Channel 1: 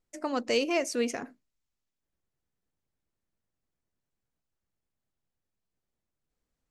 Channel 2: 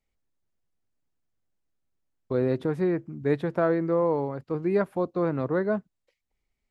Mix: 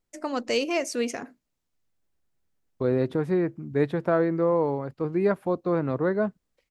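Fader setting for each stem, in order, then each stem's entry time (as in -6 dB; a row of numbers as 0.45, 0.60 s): +1.5, +1.0 dB; 0.00, 0.50 s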